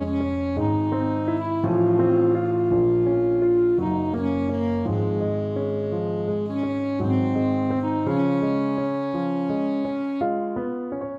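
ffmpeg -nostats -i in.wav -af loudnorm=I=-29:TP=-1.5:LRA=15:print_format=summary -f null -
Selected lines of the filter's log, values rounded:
Input Integrated:    -23.6 LUFS
Input True Peak:      -9.3 dBTP
Input LRA:             4.0 LU
Input Threshold:     -33.6 LUFS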